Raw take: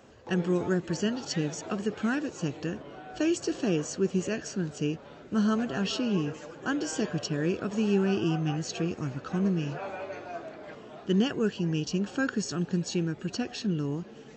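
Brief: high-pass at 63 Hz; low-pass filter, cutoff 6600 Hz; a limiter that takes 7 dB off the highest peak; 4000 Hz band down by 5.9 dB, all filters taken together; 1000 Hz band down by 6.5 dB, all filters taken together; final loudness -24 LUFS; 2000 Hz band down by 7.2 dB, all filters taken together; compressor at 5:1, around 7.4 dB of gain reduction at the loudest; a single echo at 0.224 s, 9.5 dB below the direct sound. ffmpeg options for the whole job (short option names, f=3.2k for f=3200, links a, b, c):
-af "highpass=63,lowpass=6.6k,equalizer=f=1k:t=o:g=-8,equalizer=f=2k:t=o:g=-5.5,equalizer=f=4k:t=o:g=-5,acompressor=threshold=-30dB:ratio=5,alimiter=level_in=3.5dB:limit=-24dB:level=0:latency=1,volume=-3.5dB,aecho=1:1:224:0.335,volume=13dB"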